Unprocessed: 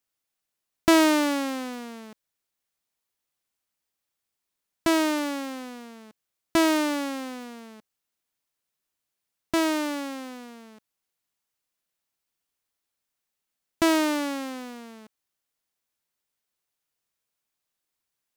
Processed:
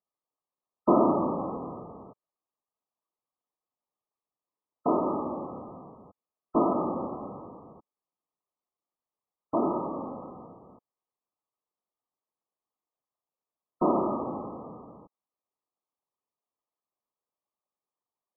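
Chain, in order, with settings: HPF 380 Hz 6 dB/oct; whisperiser; brick-wall FIR low-pass 1300 Hz

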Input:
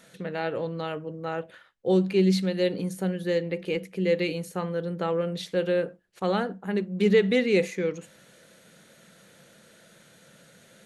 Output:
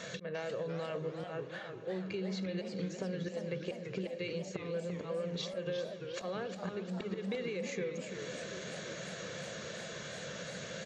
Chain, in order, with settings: HPF 53 Hz; comb 1.8 ms, depth 48%; auto swell 0.493 s; limiter -24 dBFS, peak gain reduction 11.5 dB; compressor 6:1, threshold -48 dBFS, peak gain reduction 18.5 dB; on a send: diffused feedback echo 0.456 s, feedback 68%, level -15 dB; on the sum: downsampling 16000 Hz; warbling echo 0.348 s, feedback 54%, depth 212 cents, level -8 dB; gain +10.5 dB

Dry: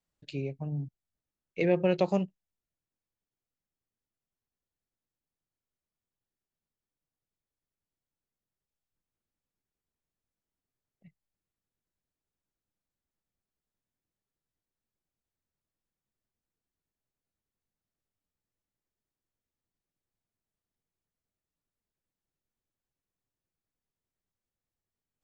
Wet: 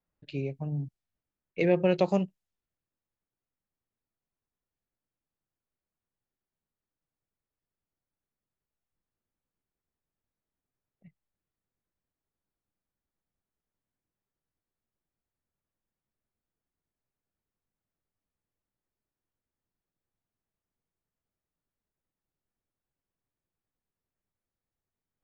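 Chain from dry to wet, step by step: low-pass opened by the level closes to 2000 Hz, open at -34 dBFS; gain +1.5 dB

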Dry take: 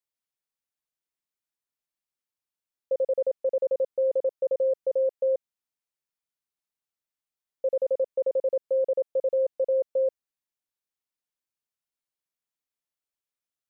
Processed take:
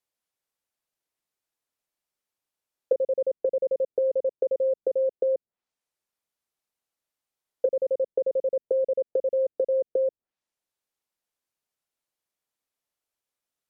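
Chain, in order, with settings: treble ducked by the level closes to 350 Hz, closed at -26 dBFS; bell 580 Hz +4.5 dB 1.7 oct; gain +3.5 dB

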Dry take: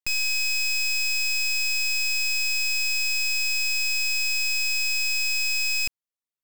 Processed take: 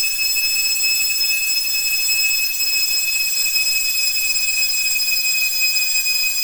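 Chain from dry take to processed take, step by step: vibrato 0.82 Hz 30 cents; Paulstretch 15×, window 0.10 s, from 5.18; tilt +2.5 dB/oct; short-mantissa float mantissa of 2-bit; gain +1.5 dB

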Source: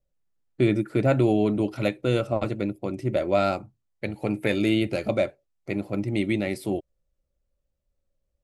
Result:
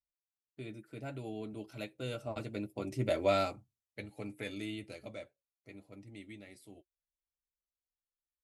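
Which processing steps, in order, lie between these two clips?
Doppler pass-by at 3.12, 8 m/s, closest 2.9 m; high shelf 2900 Hz +9.5 dB; notch comb 180 Hz; gain -5.5 dB

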